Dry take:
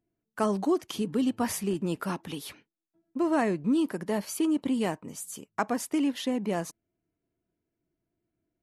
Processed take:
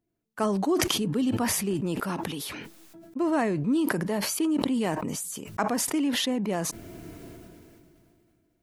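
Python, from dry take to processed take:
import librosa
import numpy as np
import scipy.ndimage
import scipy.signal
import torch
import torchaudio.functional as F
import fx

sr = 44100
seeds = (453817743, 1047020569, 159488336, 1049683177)

y = fx.sustainer(x, sr, db_per_s=22.0)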